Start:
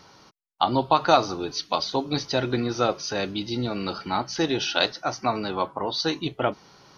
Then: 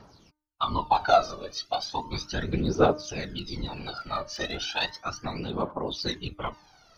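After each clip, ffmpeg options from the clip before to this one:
-af "afftfilt=real='hypot(re,im)*cos(2*PI*random(0))':imag='hypot(re,im)*sin(2*PI*random(1))':win_size=512:overlap=0.75,aphaser=in_gain=1:out_gain=1:delay=1.8:decay=0.76:speed=0.35:type=triangular,bandreject=f=303:t=h:w=4,bandreject=f=606:t=h:w=4,bandreject=f=909:t=h:w=4,bandreject=f=1212:t=h:w=4,bandreject=f=1515:t=h:w=4,bandreject=f=1818:t=h:w=4,bandreject=f=2121:t=h:w=4,volume=0.794"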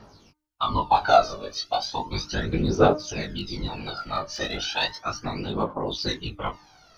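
-af "flanger=delay=18.5:depth=2.3:speed=1.6,volume=2"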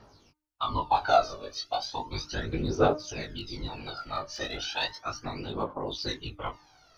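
-af "equalizer=f=190:t=o:w=0.23:g=-12,volume=0.562"

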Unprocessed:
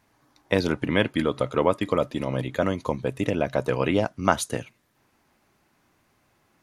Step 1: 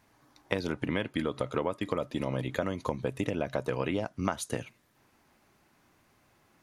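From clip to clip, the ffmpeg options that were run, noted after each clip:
-af "acompressor=threshold=0.0501:ratio=10"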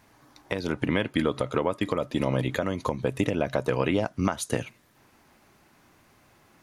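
-af "alimiter=limit=0.15:level=0:latency=1:release=295,volume=2.11"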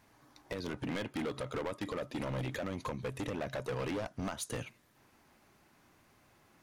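-af "volume=21.1,asoftclip=hard,volume=0.0473,volume=0.501"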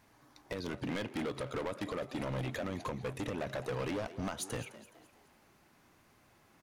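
-filter_complex "[0:a]asplit=5[s0][s1][s2][s3][s4];[s1]adelay=210,afreqshift=98,volume=0.168[s5];[s2]adelay=420,afreqshift=196,volume=0.0708[s6];[s3]adelay=630,afreqshift=294,volume=0.0295[s7];[s4]adelay=840,afreqshift=392,volume=0.0124[s8];[s0][s5][s6][s7][s8]amix=inputs=5:normalize=0"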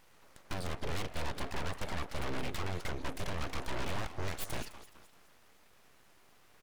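-af "aeval=exprs='abs(val(0))':c=same,volume=1.58"

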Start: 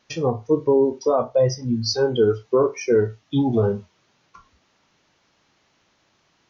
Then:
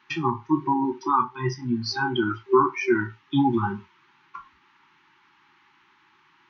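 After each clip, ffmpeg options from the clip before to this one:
-filter_complex "[0:a]acrossover=split=380 3000:gain=0.126 1 0.0708[s0][s1][s2];[s0][s1][s2]amix=inputs=3:normalize=0,afftfilt=real='re*(1-between(b*sr/4096,390,800))':imag='im*(1-between(b*sr/4096,390,800))':win_size=4096:overlap=0.75,equalizer=f=150:w=2.3:g=6.5,volume=2.66"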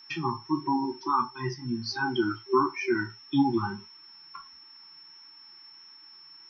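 -af "aeval=exprs='val(0)+0.00631*sin(2*PI*5400*n/s)':c=same,flanger=delay=3.2:depth=3.5:regen=63:speed=1.5:shape=sinusoidal"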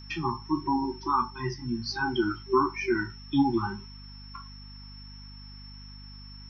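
-af "aeval=exprs='val(0)+0.00562*(sin(2*PI*50*n/s)+sin(2*PI*2*50*n/s)/2+sin(2*PI*3*50*n/s)/3+sin(2*PI*4*50*n/s)/4+sin(2*PI*5*50*n/s)/5)':c=same"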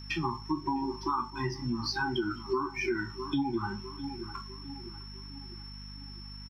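-filter_complex "[0:a]asplit=2[s0][s1];[s1]aeval=exprs='sgn(val(0))*max(abs(val(0))-0.00531,0)':c=same,volume=0.316[s2];[s0][s2]amix=inputs=2:normalize=0,asplit=2[s3][s4];[s4]adelay=655,lowpass=f=1600:p=1,volume=0.126,asplit=2[s5][s6];[s6]adelay=655,lowpass=f=1600:p=1,volume=0.5,asplit=2[s7][s8];[s8]adelay=655,lowpass=f=1600:p=1,volume=0.5,asplit=2[s9][s10];[s10]adelay=655,lowpass=f=1600:p=1,volume=0.5[s11];[s3][s5][s7][s9][s11]amix=inputs=5:normalize=0,acompressor=threshold=0.0398:ratio=5"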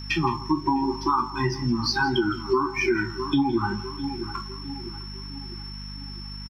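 -af "aecho=1:1:166:0.133,volume=2.51"

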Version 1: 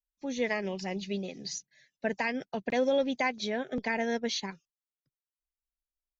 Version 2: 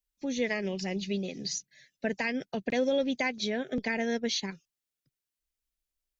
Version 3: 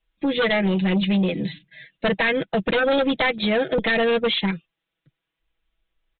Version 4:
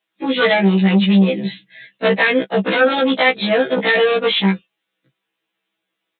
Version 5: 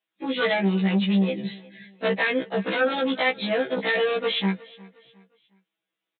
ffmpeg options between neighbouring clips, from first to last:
-filter_complex "[0:a]equalizer=f=950:w=1.2:g=-8,asplit=2[s0][s1];[s1]acompressor=threshold=0.01:ratio=6,volume=1[s2];[s0][s2]amix=inputs=2:normalize=0"
-af "aecho=1:1:6.1:0.82,aresample=8000,aeval=exprs='0.158*sin(PI/2*2.82*val(0)/0.158)':c=same,aresample=44100"
-af "highpass=f=180:w=0.5412,highpass=f=180:w=1.3066,afftfilt=real='re*1.73*eq(mod(b,3),0)':imag='im*1.73*eq(mod(b,3),0)':win_size=2048:overlap=0.75,volume=2.51"
-af "aecho=1:1:359|718|1077:0.075|0.0285|0.0108,volume=0.376"

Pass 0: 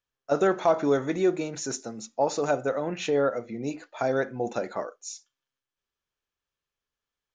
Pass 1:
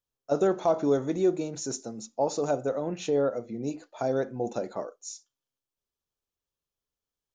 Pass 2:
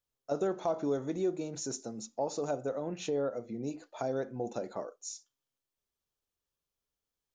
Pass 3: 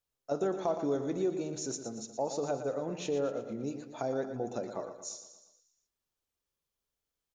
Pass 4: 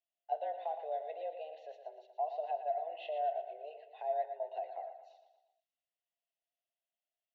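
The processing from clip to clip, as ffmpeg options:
-af "equalizer=f=1900:t=o:w=1.6:g=-11"
-af "acompressor=threshold=0.00891:ratio=1.5"
-af "aecho=1:1:117|234|351|468|585|702:0.316|0.164|0.0855|0.0445|0.0231|0.012"
-filter_complex "[0:a]asplit=3[s0][s1][s2];[s0]bandpass=f=530:t=q:w=8,volume=1[s3];[s1]bandpass=f=1840:t=q:w=8,volume=0.501[s4];[s2]bandpass=f=2480:t=q:w=8,volume=0.355[s5];[s3][s4][s5]amix=inputs=3:normalize=0,highpass=f=220:t=q:w=0.5412,highpass=f=220:t=q:w=1.307,lowpass=f=3500:t=q:w=0.5176,lowpass=f=3500:t=q:w=0.7071,lowpass=f=3500:t=q:w=1.932,afreqshift=160,aexciter=amount=2.8:drive=5.2:freq=2900,volume=1.41"

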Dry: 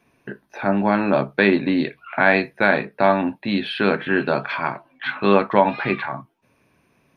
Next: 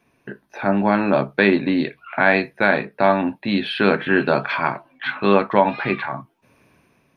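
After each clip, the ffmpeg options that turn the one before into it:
-af "dynaudnorm=f=160:g=7:m=3.16,volume=0.891"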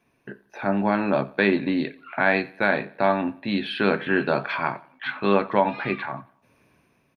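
-af "aecho=1:1:90|180|270:0.0794|0.0318|0.0127,volume=0.596"

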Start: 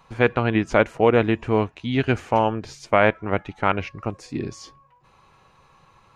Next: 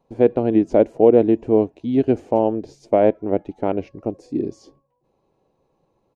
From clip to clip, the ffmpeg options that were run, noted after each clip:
-af "agate=range=0.398:threshold=0.00251:ratio=16:detection=peak,firequalizer=gain_entry='entry(110,0);entry(290,13);entry(660,8);entry(1200,-12);entry(4700,-5)':delay=0.05:min_phase=1,volume=0.531"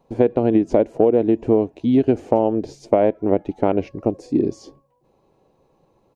-af "acompressor=threshold=0.126:ratio=6,volume=2"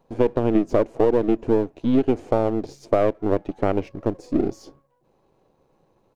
-af "aeval=exprs='if(lt(val(0),0),0.447*val(0),val(0))':c=same"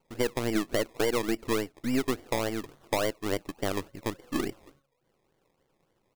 -af "acrusher=samples=24:mix=1:aa=0.000001:lfo=1:lforange=14.4:lforate=3.5,volume=0.355"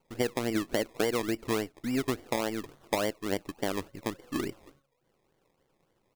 -af "aeval=exprs='0.188*(cos(1*acos(clip(val(0)/0.188,-1,1)))-cos(1*PI/2))+0.0335*(cos(4*acos(clip(val(0)/0.188,-1,1)))-cos(4*PI/2))':c=same"

